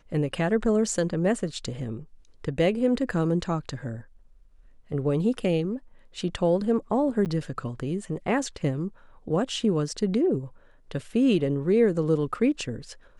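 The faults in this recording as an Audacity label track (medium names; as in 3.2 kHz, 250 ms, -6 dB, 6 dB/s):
7.250000	7.260000	dropout 8.9 ms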